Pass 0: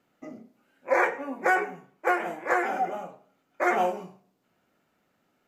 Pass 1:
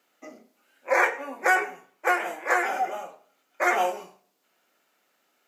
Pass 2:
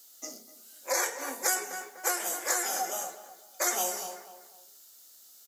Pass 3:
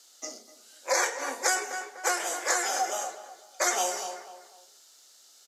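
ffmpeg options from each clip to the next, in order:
-af "highpass=370,highshelf=f=2.2k:g=9.5"
-filter_complex "[0:a]asplit=2[a][b];[b]adelay=247,lowpass=f=2.4k:p=1,volume=-14dB,asplit=2[c][d];[d]adelay=247,lowpass=f=2.4k:p=1,volume=0.33,asplit=2[e][f];[f]adelay=247,lowpass=f=2.4k:p=1,volume=0.33[g];[a][c][e][g]amix=inputs=4:normalize=0,aexciter=amount=11.7:drive=5.8:freq=3.7k,acrossover=split=250[h][i];[i]acompressor=threshold=-26dB:ratio=2.5[j];[h][j]amix=inputs=2:normalize=0,volume=-3dB"
-af "highpass=340,lowpass=6.7k,volume=4.5dB"

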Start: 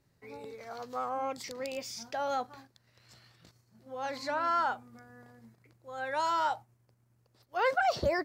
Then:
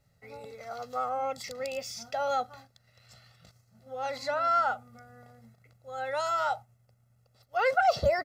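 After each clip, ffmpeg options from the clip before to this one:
-af "aecho=1:1:1.5:0.78"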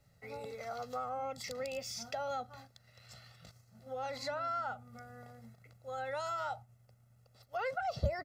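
-filter_complex "[0:a]acrossover=split=210[a][b];[b]acompressor=threshold=-40dB:ratio=3[c];[a][c]amix=inputs=2:normalize=0,volume=1dB"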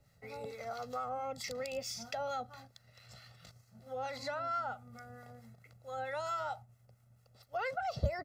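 -filter_complex "[0:a]acrossover=split=880[a][b];[a]aeval=exprs='val(0)*(1-0.5/2+0.5/2*cos(2*PI*4.5*n/s))':c=same[c];[b]aeval=exprs='val(0)*(1-0.5/2-0.5/2*cos(2*PI*4.5*n/s))':c=same[d];[c][d]amix=inputs=2:normalize=0,volume=2.5dB"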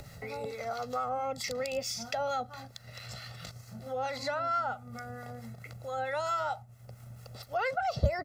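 -af "acompressor=mode=upward:threshold=-41dB:ratio=2.5,volume=5.5dB"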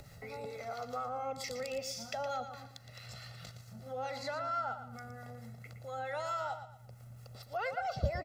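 -af "aecho=1:1:116|232|348|464:0.316|0.101|0.0324|0.0104,volume=-5.5dB"

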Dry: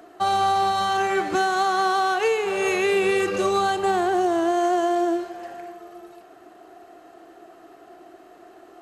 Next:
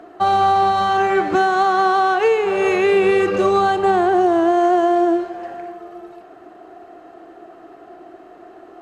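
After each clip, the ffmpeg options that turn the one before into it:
-af "lowpass=f=1.8k:p=1,volume=6.5dB"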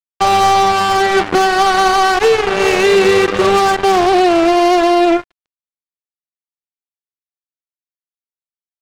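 -af "acrusher=bits=2:mix=0:aa=0.5,volume=3.5dB"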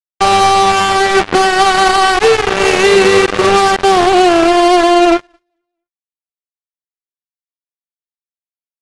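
-af "aecho=1:1:222|444|666:0.15|0.0539|0.0194,aeval=exprs='0.841*(cos(1*acos(clip(val(0)/0.841,-1,1)))-cos(1*PI/2))+0.00944*(cos(3*acos(clip(val(0)/0.841,-1,1)))-cos(3*PI/2))+0.119*(cos(7*acos(clip(val(0)/0.841,-1,1)))-cos(7*PI/2))':c=same,volume=1dB" -ar 24000 -c:a aac -b:a 96k

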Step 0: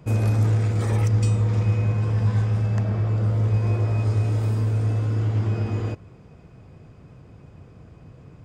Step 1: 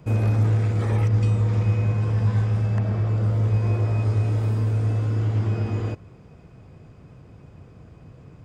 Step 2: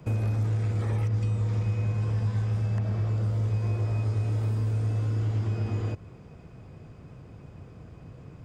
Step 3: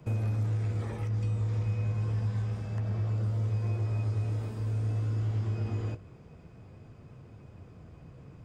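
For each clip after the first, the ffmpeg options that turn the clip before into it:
-filter_complex "[0:a]acrossover=split=3900[a][b];[b]acompressor=threshold=-53dB:ratio=4:attack=1:release=60[c];[a][c]amix=inputs=2:normalize=0"
-filter_complex "[0:a]acrossover=split=110|3500[a][b][c];[a]acompressor=threshold=-29dB:ratio=4[d];[b]acompressor=threshold=-32dB:ratio=4[e];[c]acompressor=threshold=-56dB:ratio=4[f];[d][e][f]amix=inputs=3:normalize=0"
-af "flanger=delay=8.6:depth=9.7:regen=-52:speed=0.28:shape=sinusoidal"

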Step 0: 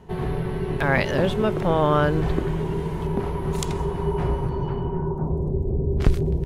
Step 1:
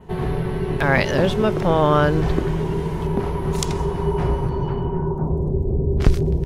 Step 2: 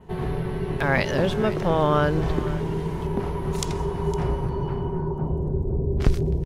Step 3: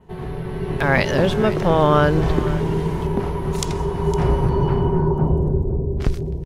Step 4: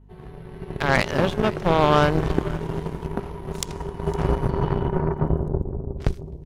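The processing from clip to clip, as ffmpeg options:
-af "adynamicequalizer=threshold=0.00224:dfrequency=5500:dqfactor=2.1:tfrequency=5500:tqfactor=2.1:attack=5:release=100:ratio=0.375:range=2.5:mode=boostabove:tftype=bell,volume=3dB"
-af "aecho=1:1:509:0.168,volume=-4dB"
-af "dynaudnorm=f=110:g=11:m=13dB,volume=-2.5dB"
-af "aeval=exprs='val(0)+0.0178*(sin(2*PI*50*n/s)+sin(2*PI*2*50*n/s)/2+sin(2*PI*3*50*n/s)/3+sin(2*PI*4*50*n/s)/4+sin(2*PI*5*50*n/s)/5)':c=same,aeval=exprs='0.708*(cos(1*acos(clip(val(0)/0.708,-1,1)))-cos(1*PI/2))+0.0708*(cos(3*acos(clip(val(0)/0.708,-1,1)))-cos(3*PI/2))+0.0501*(cos(7*acos(clip(val(0)/0.708,-1,1)))-cos(7*PI/2))':c=same"

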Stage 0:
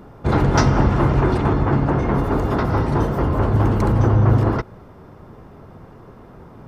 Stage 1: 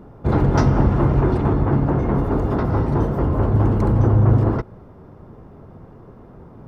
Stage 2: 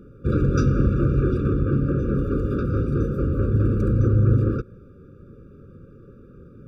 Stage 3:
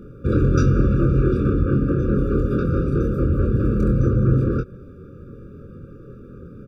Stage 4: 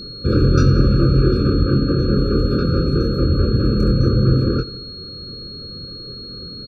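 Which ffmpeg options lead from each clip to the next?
-af "tiltshelf=f=1.2k:g=5,volume=-4.5dB"
-af "afftfilt=real='re*eq(mod(floor(b*sr/1024/560),2),0)':imag='im*eq(mod(floor(b*sr/1024/560),2),0)':win_size=1024:overlap=0.75,volume=-3dB"
-filter_complex "[0:a]asplit=2[a][b];[b]adelay=24,volume=-5dB[c];[a][c]amix=inputs=2:normalize=0,asplit=2[d][e];[e]acompressor=threshold=-28dB:ratio=6,volume=-3dB[f];[d][f]amix=inputs=2:normalize=0"
-af "aecho=1:1:89|178|267|356|445:0.126|0.0705|0.0395|0.0221|0.0124,aeval=exprs='val(0)+0.0178*sin(2*PI*4300*n/s)':c=same,volume=2.5dB"

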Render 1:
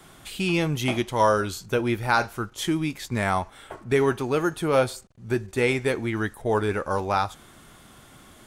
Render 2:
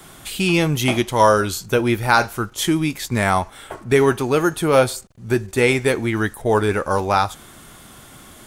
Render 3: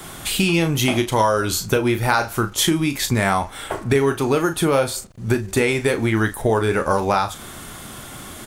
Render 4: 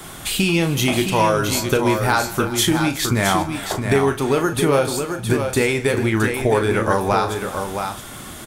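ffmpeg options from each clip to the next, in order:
-af "highshelf=f=7.5k:g=6.5,volume=6dB"
-filter_complex "[0:a]acompressor=threshold=-22dB:ratio=6,asplit=2[a][b];[b]adelay=36,volume=-9.5dB[c];[a][c]amix=inputs=2:normalize=0,volume=6.5dB"
-filter_complex "[0:a]asoftclip=type=hard:threshold=-7.5dB,asplit=2[a][b];[b]aecho=0:1:162|368|668:0.106|0.141|0.473[c];[a][c]amix=inputs=2:normalize=0"

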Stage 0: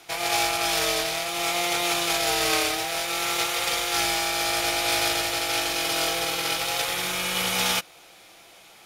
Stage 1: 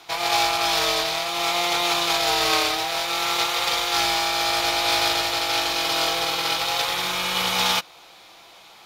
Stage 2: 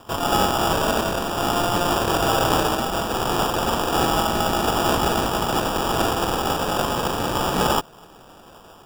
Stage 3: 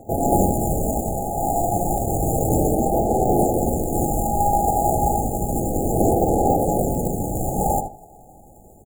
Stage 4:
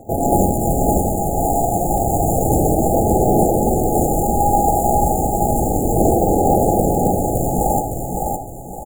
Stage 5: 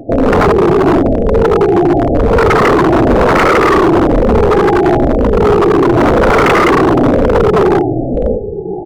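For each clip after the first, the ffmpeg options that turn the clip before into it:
-af "equalizer=f=1k:t=o:w=0.67:g=8,equalizer=f=4k:t=o:w=0.67:g=6,equalizer=f=10k:t=o:w=0.67:g=-6"
-af "acrusher=samples=21:mix=1:aa=0.000001,volume=1.5dB"
-filter_complex "[0:a]asplit=2[a][b];[b]adelay=77,lowpass=f=3k:p=1,volume=-7dB,asplit=2[c][d];[d]adelay=77,lowpass=f=3k:p=1,volume=0.25,asplit=2[e][f];[f]adelay=77,lowpass=f=3k:p=1,volume=0.25[g];[a][c][e][g]amix=inputs=4:normalize=0,afftfilt=real='re*(1-between(b*sr/4096,860,6300))':imag='im*(1-between(b*sr/4096,860,6300))':win_size=4096:overlap=0.75,aphaser=in_gain=1:out_gain=1:delay=1.3:decay=0.51:speed=0.31:type=sinusoidal"
-af "aecho=1:1:561|1122|1683|2244|2805:0.631|0.227|0.0818|0.0294|0.0106,volume=2.5dB"
-af "afftfilt=real='re*pow(10,18/40*sin(2*PI*(0.82*log(max(b,1)*sr/1024/100)/log(2)-(-1)*(pts-256)/sr)))':imag='im*pow(10,18/40*sin(2*PI*(0.82*log(max(b,1)*sr/1024/100)/log(2)-(-1)*(pts-256)/sr)))':win_size=1024:overlap=0.75,lowpass=f=420:t=q:w=4.9,aeval=exprs='0.447*(abs(mod(val(0)/0.447+3,4)-2)-1)':c=same,volume=3.5dB"

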